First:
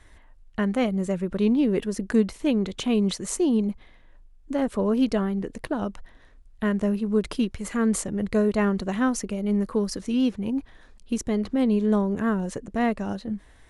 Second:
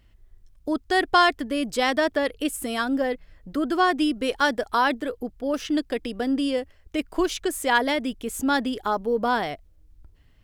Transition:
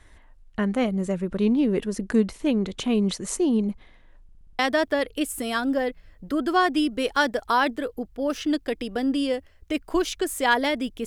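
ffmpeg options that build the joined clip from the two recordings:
-filter_complex "[0:a]apad=whole_dur=11.06,atrim=end=11.06,asplit=6[a][b][c][d][e][f];[a]atrim=end=4.292[g];[b]atrim=start=4.228:end=4.292[h];[c]atrim=start=4.228:end=4.292[i];[d]atrim=start=4.228:end=4.292[j];[e]atrim=start=4.228:end=4.292[k];[f]atrim=start=4.228:end=4.292[l];[1:a]atrim=start=1.828:end=8.3[m];[g][h]acrossfade=d=0.004:c1=hsin:c2=hsin[n];[n][i]acrossfade=d=0.004:c1=hsin:c2=hsin[o];[o][j]acrossfade=d=0.004:c1=hsin:c2=hsin[p];[p][k]acrossfade=d=0.004:c1=hsin:c2=hsin[q];[q][l]acrossfade=d=0.004:c1=hsin:c2=hsin[r];[r][m]acrossfade=d=0.004:c1=hsin:c2=hsin"

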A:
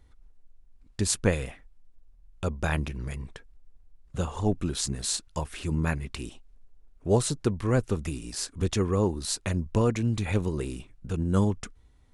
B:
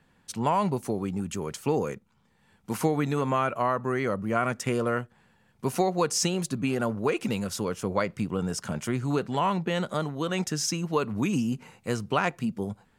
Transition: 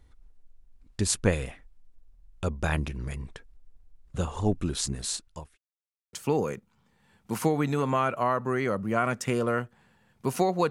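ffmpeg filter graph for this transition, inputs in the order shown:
-filter_complex "[0:a]apad=whole_dur=10.7,atrim=end=10.7,asplit=2[a][b];[a]atrim=end=5.58,asetpts=PTS-STARTPTS,afade=t=out:st=4.68:d=0.9:c=qsin[c];[b]atrim=start=5.58:end=6.13,asetpts=PTS-STARTPTS,volume=0[d];[1:a]atrim=start=1.52:end=6.09,asetpts=PTS-STARTPTS,afade=t=in:d=0.004:c=hsin[e];[c][d][e]concat=n=3:v=0:a=1"

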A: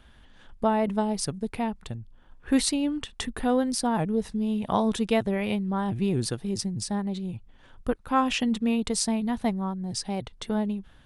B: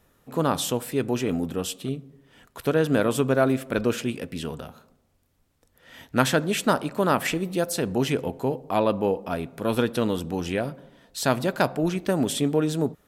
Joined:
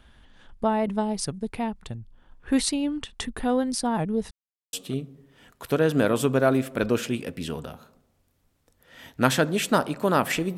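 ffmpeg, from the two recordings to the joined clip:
-filter_complex "[0:a]apad=whole_dur=10.57,atrim=end=10.57,asplit=2[a][b];[a]atrim=end=4.31,asetpts=PTS-STARTPTS,afade=t=out:st=4.306:d=0.004:c=hsin[c];[b]atrim=start=4.31:end=4.73,asetpts=PTS-STARTPTS,volume=0[d];[1:a]atrim=start=1.68:end=7.52,asetpts=PTS-STARTPTS,afade=t=in:d=0.004:c=hsin[e];[c][d][e]concat=n=3:v=0:a=1"

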